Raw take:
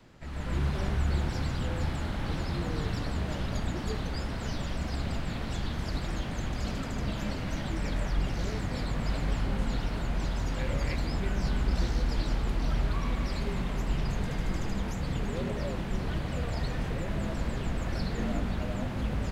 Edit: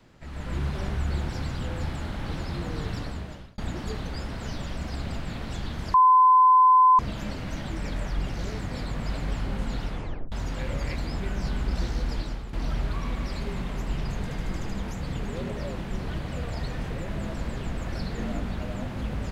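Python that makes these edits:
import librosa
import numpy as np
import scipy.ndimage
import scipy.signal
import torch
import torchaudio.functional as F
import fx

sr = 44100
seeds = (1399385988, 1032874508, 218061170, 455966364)

y = fx.edit(x, sr, fx.fade_out_span(start_s=2.99, length_s=0.59),
    fx.bleep(start_s=5.94, length_s=1.05, hz=1020.0, db=-13.0),
    fx.tape_stop(start_s=9.86, length_s=0.46),
    fx.fade_out_to(start_s=12.13, length_s=0.4, floor_db=-11.0), tone=tone)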